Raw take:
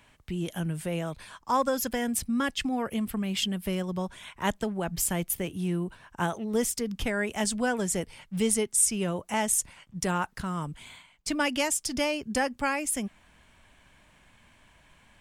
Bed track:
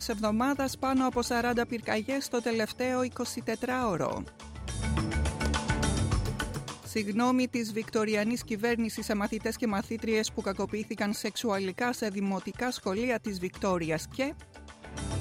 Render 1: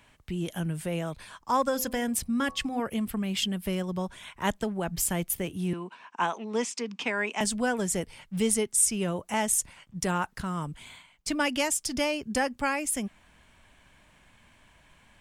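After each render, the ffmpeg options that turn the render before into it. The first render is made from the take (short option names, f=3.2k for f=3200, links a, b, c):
-filter_complex "[0:a]asettb=1/sr,asplit=3[a][b][c];[a]atrim=end=1.654[d];[b]atrim=start=1.65:end=2.8,asetpts=PTS-STARTPTS,afade=t=in:d=0.004:c=qsin,afade=t=out:st=1.146:d=0.004:c=qsin,bandreject=f=85.69:t=h:w=4,bandreject=f=171.38:t=h:w=4,bandreject=f=257.07:t=h:w=4,bandreject=f=342.76:t=h:w=4,bandreject=f=428.45:t=h:w=4,bandreject=f=514.14:t=h:w=4,bandreject=f=599.83:t=h:w=4,bandreject=f=685.52:t=h:w=4,bandreject=f=771.21:t=h:w=4,bandreject=f=856.9:t=h:w=4,bandreject=f=942.59:t=h:w=4,bandreject=f=1.02828k:t=h:w=4,bandreject=f=1.11397k:t=h:w=4,bandreject=f=1.19966k:t=h:w=4,bandreject=f=1.28535k:t=h:w=4[e];[c]atrim=start=2.796[f];[d][e]acrossfade=d=0.004:c1=hsin:c2=qsin[g];[g][f]acrossfade=d=0.004:c1=qsin:c2=hsin,asettb=1/sr,asplit=3[h][i][j];[h]atrim=end=5.734[k];[i]atrim=start=5.73:end=7.41,asetpts=PTS-STARTPTS,afade=t=in:d=0.004:c=qsin,afade=t=out:st=1.676:d=0.004:c=qsin,highpass=f=230:w=0.5412,highpass=f=230:w=1.3066,equalizer=f=330:t=q:w=4:g=-5,equalizer=f=560:t=q:w=4:g=-4,equalizer=f=990:t=q:w=4:g=8,equalizer=f=2.5k:t=q:w=4:g=8,lowpass=f=7.1k:w=0.5412,lowpass=f=7.1k:w=1.3066[l];[j]atrim=start=7.406[m];[k][l]acrossfade=d=0.004:c1=hsin:c2=qsin[n];[n][m]acrossfade=d=0.004:c1=qsin:c2=hsin"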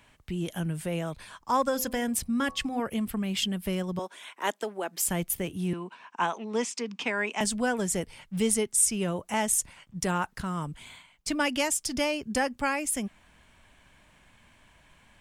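-filter_complex "[0:a]asettb=1/sr,asplit=3[a][b][c];[a]atrim=end=3.994[d];[b]atrim=start=3.99:end=5.07,asetpts=PTS-STARTPTS,afade=t=in:d=0.004:c=qsin,afade=t=out:st=1.076:d=0.004:c=qsin,highpass=f=300:w=0.5412,highpass=f=300:w=1.3066[e];[c]atrim=start=5.066[f];[d][e]acrossfade=d=0.004:c1=hsin:c2=qsin[g];[g][f]acrossfade=d=0.004:c1=qsin:c2=hsin"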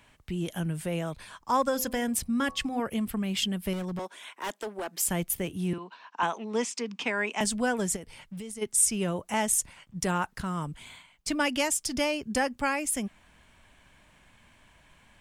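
-filter_complex "[0:a]asettb=1/sr,asplit=3[a][b][c];[a]atrim=end=3.734[d];[b]atrim=start=3.73:end=4.89,asetpts=PTS-STARTPTS,afade=t=in:d=0.004:c=qsin,afade=t=out:st=1.156:d=0.004:c=qsin,asoftclip=type=hard:threshold=-30dB[e];[c]atrim=start=4.886[f];[d][e]acrossfade=d=0.004:c1=hsin:c2=qsin[g];[g][f]acrossfade=d=0.004:c1=qsin:c2=hsin,asettb=1/sr,asplit=3[h][i][j];[h]atrim=end=5.784[k];[i]atrim=start=5.78:end=6.23,asetpts=PTS-STARTPTS,afade=t=in:d=0.004:c=qsin,afade=t=out:st=0.446:d=0.004:c=qsin,highpass=f=200:w=0.5412,highpass=f=200:w=1.3066,equalizer=f=230:t=q:w=4:g=-9,equalizer=f=380:t=q:w=4:g=-6,equalizer=f=2.3k:t=q:w=4:g=-5,equalizer=f=4.2k:t=q:w=4:g=7,lowpass=f=6.2k:w=0.5412,lowpass=f=6.2k:w=1.3066[l];[j]atrim=start=6.226[m];[k][l]acrossfade=d=0.004:c1=hsin:c2=qsin[n];[n][m]acrossfade=d=0.004:c1=qsin:c2=hsin,asplit=3[o][p][q];[o]afade=t=out:st=7.95:d=0.02[r];[p]acompressor=threshold=-36dB:ratio=10:attack=3.2:release=140:knee=1:detection=peak,afade=t=in:st=7.95:d=0.02,afade=t=out:st=8.61:d=0.02[s];[q]afade=t=in:st=8.61:d=0.02[t];[r][s][t]amix=inputs=3:normalize=0"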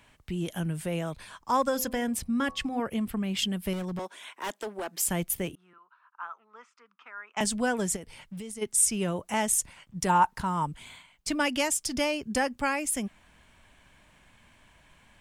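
-filter_complex "[0:a]asettb=1/sr,asplit=3[a][b][c];[a]atrim=end=1.864[d];[b]atrim=start=1.86:end=3.39,asetpts=PTS-STARTPTS,afade=t=in:d=0.004:c=qsin,afade=t=out:st=1.526:d=0.004:c=qsin,highshelf=f=4.2k:g=-5[e];[c]atrim=start=3.386[f];[d][e]acrossfade=d=0.004:c1=hsin:c2=qsin[g];[g][f]acrossfade=d=0.004:c1=qsin:c2=hsin,asettb=1/sr,asplit=3[h][i][j];[h]atrim=end=5.554[k];[i]atrim=start=5.55:end=7.37,asetpts=PTS-STARTPTS,afade=t=in:d=0.004:c=qsin,afade=t=out:st=1.816:d=0.004:c=qsin,bandpass=f=1.3k:t=q:w=8.5[l];[j]atrim=start=7.366[m];[k][l]acrossfade=d=0.004:c1=hsin:c2=qsin[n];[n][m]acrossfade=d=0.004:c1=qsin:c2=hsin,asettb=1/sr,asplit=3[o][p][q];[o]atrim=end=10.094[r];[p]atrim=start=10.09:end=10.66,asetpts=PTS-STARTPTS,afade=t=in:d=0.004:c=qsin,afade=t=out:st=0.566:d=0.004:c=qsin,equalizer=f=920:w=4.1:g=14[s];[q]atrim=start=10.656[t];[r][s]acrossfade=d=0.004:c1=hsin:c2=qsin[u];[u][t]acrossfade=d=0.004:c1=qsin:c2=hsin"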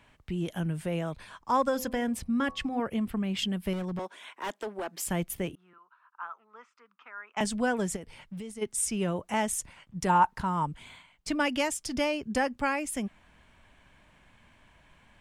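-af "highshelf=f=4.9k:g=-9"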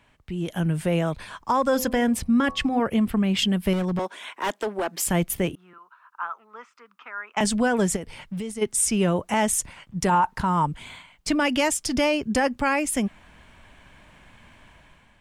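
-af "dynaudnorm=f=150:g=7:m=8.5dB,alimiter=limit=-12.5dB:level=0:latency=1:release=37"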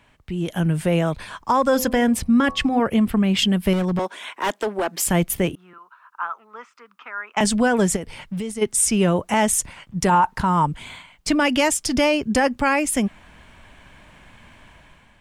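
-af "volume=3.5dB"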